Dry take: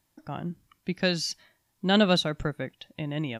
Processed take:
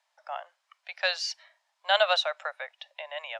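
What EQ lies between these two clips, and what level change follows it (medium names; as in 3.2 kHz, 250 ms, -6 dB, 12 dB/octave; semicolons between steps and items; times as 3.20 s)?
steep high-pass 580 Hz 72 dB/octave; distance through air 100 m; +3.5 dB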